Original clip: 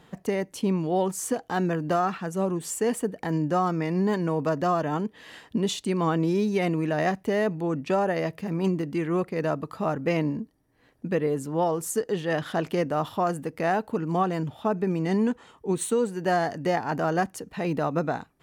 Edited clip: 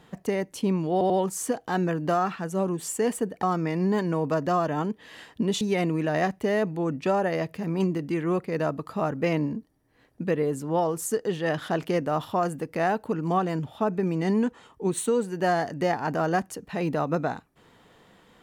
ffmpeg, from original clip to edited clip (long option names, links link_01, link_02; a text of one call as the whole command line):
ffmpeg -i in.wav -filter_complex "[0:a]asplit=5[link_01][link_02][link_03][link_04][link_05];[link_01]atrim=end=1.012[link_06];[link_02]atrim=start=0.918:end=1.012[link_07];[link_03]atrim=start=0.918:end=3.252[link_08];[link_04]atrim=start=3.578:end=5.762[link_09];[link_05]atrim=start=6.448[link_10];[link_06][link_07]acrossfade=duration=0.004:curve1=hsin:curve2=hsin[link_11];[link_11][link_08]acrossfade=duration=0.004:curve1=hsin:curve2=hsin[link_12];[link_12][link_09]acrossfade=duration=0.004:curve1=hsin:curve2=hsin[link_13];[link_13][link_10]acrossfade=duration=0.004:curve1=hsin:curve2=hsin" out.wav